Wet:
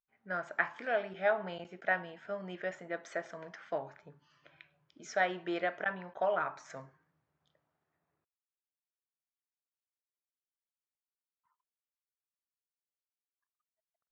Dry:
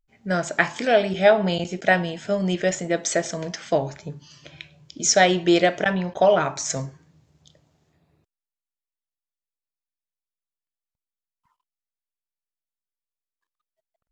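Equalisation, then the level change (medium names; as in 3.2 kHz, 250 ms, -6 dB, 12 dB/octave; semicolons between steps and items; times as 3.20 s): band-pass filter 1.4 kHz, Q 1.6; tilt EQ -2.5 dB/octave; -6.5 dB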